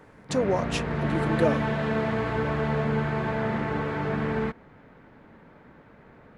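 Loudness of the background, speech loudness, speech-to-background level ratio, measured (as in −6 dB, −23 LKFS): −28.0 LKFS, −29.5 LKFS, −1.5 dB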